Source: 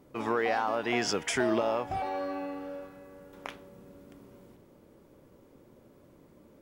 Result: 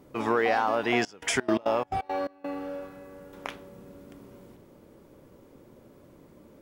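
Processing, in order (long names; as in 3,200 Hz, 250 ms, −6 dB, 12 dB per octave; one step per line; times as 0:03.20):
0:00.98–0:02.49: gate pattern "xx.x.xx.x.xx.." 172 BPM −24 dB
level +4 dB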